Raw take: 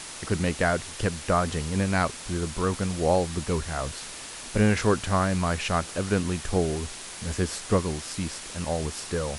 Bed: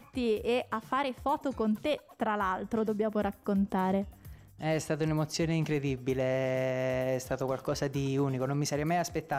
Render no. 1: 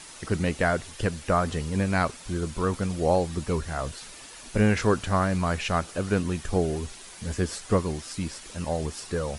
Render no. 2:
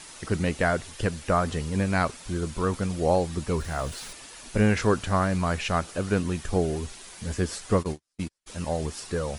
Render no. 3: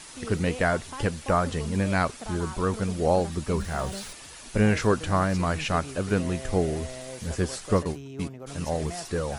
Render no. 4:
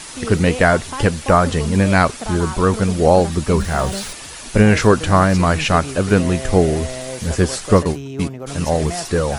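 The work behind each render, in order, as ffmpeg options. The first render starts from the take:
-af "afftdn=nr=8:nf=-40"
-filter_complex "[0:a]asettb=1/sr,asplit=3[a][b][c];[a]atrim=end=3.594[d];[b]atrim=start=3.59:end=4.13,asetpts=PTS-STARTPTS,afade=t=in:d=0.004:c=qsin,afade=t=out:st=0.536:d=0.004:c=qsin,aeval=exprs='val(0)+0.5*0.00794*sgn(val(0))':c=same[e];[c]atrim=start=4.126[f];[d][e]acrossfade=d=0.004:c1=hsin:c2=qsin[g];[g][f]acrossfade=d=0.004:c1=qsin:c2=hsin,asplit=3[h][i][j];[h]afade=t=out:st=7.78:d=0.02[k];[i]agate=range=-44dB:threshold=-30dB:ratio=16:release=100:detection=peak,afade=t=in:st=7.78:d=0.02,afade=t=out:st=8.46:d=0.02[l];[j]afade=t=in:st=8.46:d=0.02[m];[k][l][m]amix=inputs=3:normalize=0"
-filter_complex "[1:a]volume=-9.5dB[a];[0:a][a]amix=inputs=2:normalize=0"
-af "volume=10.5dB,alimiter=limit=-1dB:level=0:latency=1"

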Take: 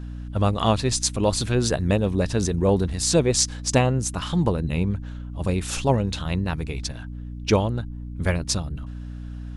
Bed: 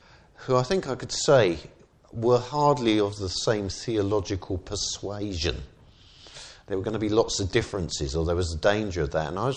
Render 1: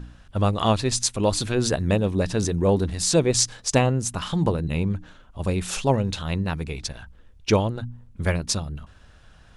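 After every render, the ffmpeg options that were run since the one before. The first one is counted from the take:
-af "bandreject=f=60:t=h:w=4,bandreject=f=120:t=h:w=4,bandreject=f=180:t=h:w=4,bandreject=f=240:t=h:w=4,bandreject=f=300:t=h:w=4"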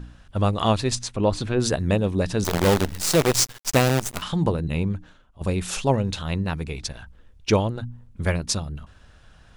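-filter_complex "[0:a]asettb=1/sr,asplit=3[a][b][c];[a]atrim=end=0.954[d];[b]atrim=start=0.95:end=1.6,asetpts=PTS-STARTPTS,afade=t=in:d=0.004:c=qsin,afade=t=out:st=0.646:d=0.004:c=qsin,aemphasis=mode=reproduction:type=75fm[e];[c]atrim=start=1.596[f];[d][e]acrossfade=d=0.004:c1=hsin:c2=qsin[g];[g][f]acrossfade=d=0.004:c1=qsin:c2=hsin,asettb=1/sr,asplit=3[h][i][j];[h]atrim=end=2.444[k];[i]atrim=start=2.44:end=4.22,asetpts=PTS-STARTPTS,afade=t=in:d=0.004:c=qsin,afade=t=out:st=1.776:d=0.004:c=qsin,acrusher=bits=4:dc=4:mix=0:aa=0.000001[l];[j]atrim=start=4.216[m];[k][l]acrossfade=d=0.004:c1=hsin:c2=qsin[n];[n][m]acrossfade=d=0.004:c1=qsin:c2=hsin,asplit=2[o][p];[o]atrim=end=5.41,asetpts=PTS-STARTPTS,afade=t=out:st=4.84:d=0.57:silence=0.223872[q];[p]atrim=start=5.41,asetpts=PTS-STARTPTS,afade=t=in:d=0.004:c=hsin:silence=0.223872[r];[q][r]concat=n=2:v=0:a=1"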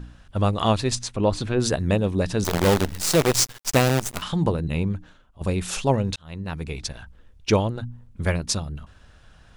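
-filter_complex "[0:a]asplit=2[a][b];[a]atrim=end=6.16,asetpts=PTS-STARTPTS,afade=t=out:st=6.156:d=0.004:c=hsin[c];[b]atrim=start=6.16,asetpts=PTS-STARTPTS,afade=t=in:d=0.55[d];[c][d]concat=n=2:v=0:a=1"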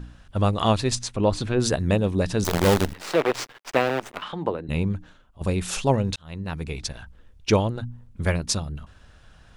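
-filter_complex "[0:a]asettb=1/sr,asplit=3[a][b][c];[a]atrim=end=2.934[d];[b]atrim=start=2.93:end=4.69,asetpts=PTS-STARTPTS,afade=t=in:d=0.004:c=qsin,afade=t=out:st=1.756:d=0.004:c=qsin,acrossover=split=280 3300:gain=0.158 1 0.112[e][f][g];[e][f][g]amix=inputs=3:normalize=0[h];[c]atrim=start=4.686[i];[d][h]acrossfade=d=0.004:c1=hsin:c2=qsin[j];[j][i]acrossfade=d=0.004:c1=qsin:c2=hsin"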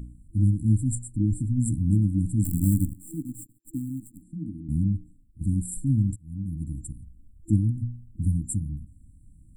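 -af "afftfilt=real='re*(1-between(b*sr/4096,330,7300))':imag='im*(1-between(b*sr/4096,330,7300))':win_size=4096:overlap=0.75,adynamicequalizer=threshold=0.0126:dfrequency=110:dqfactor=5.1:tfrequency=110:tqfactor=5.1:attack=5:release=100:ratio=0.375:range=2.5:mode=boostabove:tftype=bell"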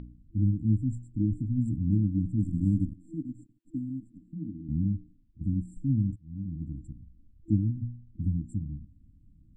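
-af "lowpass=f=4k:w=0.5412,lowpass=f=4k:w=1.3066,lowshelf=f=160:g=-6.5"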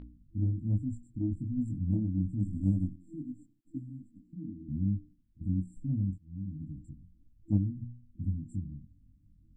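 -af "aeval=exprs='0.224*(cos(1*acos(clip(val(0)/0.224,-1,1)))-cos(1*PI/2))+0.0141*(cos(3*acos(clip(val(0)/0.224,-1,1)))-cos(3*PI/2))+0.002*(cos(5*acos(clip(val(0)/0.224,-1,1)))-cos(5*PI/2))':c=same,flanger=delay=20:depth=2.3:speed=1.2"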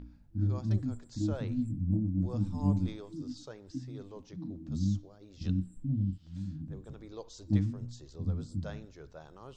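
-filter_complex "[1:a]volume=-23dB[a];[0:a][a]amix=inputs=2:normalize=0"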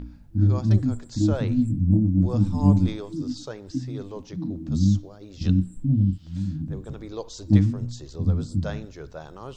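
-af "volume=10.5dB"

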